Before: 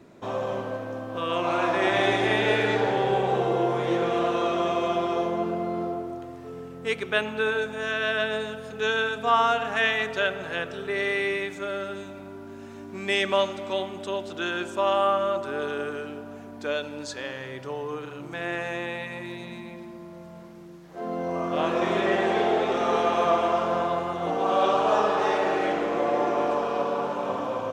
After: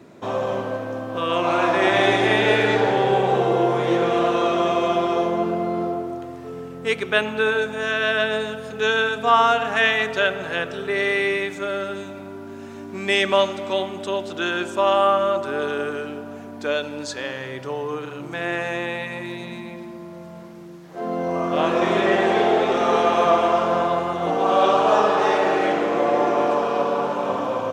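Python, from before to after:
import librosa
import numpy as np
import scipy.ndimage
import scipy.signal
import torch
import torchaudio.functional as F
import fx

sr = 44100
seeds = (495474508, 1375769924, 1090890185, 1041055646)

y = scipy.signal.sosfilt(scipy.signal.butter(2, 80.0, 'highpass', fs=sr, output='sos'), x)
y = y * librosa.db_to_amplitude(5.0)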